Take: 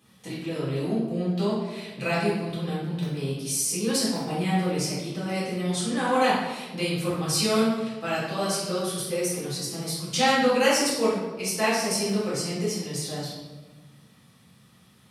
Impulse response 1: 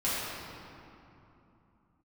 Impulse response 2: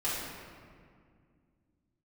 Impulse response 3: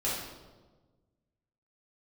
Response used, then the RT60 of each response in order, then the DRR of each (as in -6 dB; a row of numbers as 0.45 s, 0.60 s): 3; 2.9 s, 2.1 s, 1.3 s; -11.5 dB, -9.0 dB, -9.0 dB